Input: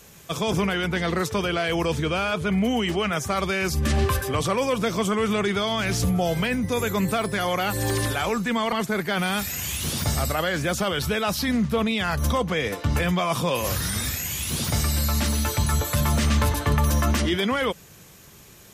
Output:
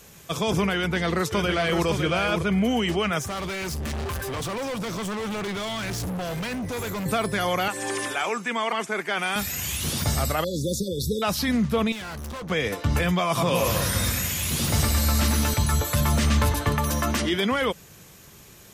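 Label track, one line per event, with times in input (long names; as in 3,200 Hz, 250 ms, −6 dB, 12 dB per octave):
0.760000	1.860000	delay throw 560 ms, feedback 15%, level −6 dB
3.210000	7.060000	hard clipping −28 dBFS
7.680000	9.360000	loudspeaker in its box 350–10,000 Hz, peaks and dips at 530 Hz −4 dB, 2,400 Hz +3 dB, 4,200 Hz −9 dB
10.440000	11.220000	linear-phase brick-wall band-stop 570–3,400 Hz
11.920000	12.500000	tube saturation drive 33 dB, bias 0.7
13.270000	15.540000	delay that swaps between a low-pass and a high-pass 105 ms, split 2,500 Hz, feedback 64%, level −2 dB
16.690000	17.380000	high-pass filter 150 Hz 6 dB per octave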